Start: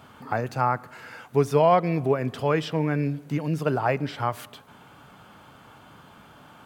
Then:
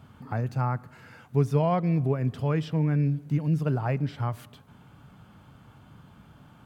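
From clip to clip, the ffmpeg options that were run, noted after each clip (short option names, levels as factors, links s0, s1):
-af "bass=f=250:g=14,treble=f=4000:g=0,volume=0.376"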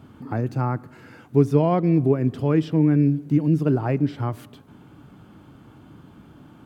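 -af "equalizer=f=320:w=1.7:g=12.5,volume=1.19"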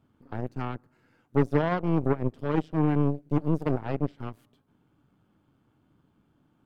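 -af "aeval=exprs='0.562*(cos(1*acos(clip(val(0)/0.562,-1,1)))-cos(1*PI/2))+0.0631*(cos(7*acos(clip(val(0)/0.562,-1,1)))-cos(7*PI/2))+0.0501*(cos(8*acos(clip(val(0)/0.562,-1,1)))-cos(8*PI/2))':c=same,volume=0.501"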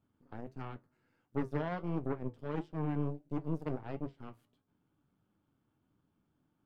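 -af "flanger=delay=9.8:depth=3.5:regen=-62:speed=1.5:shape=triangular,volume=0.473"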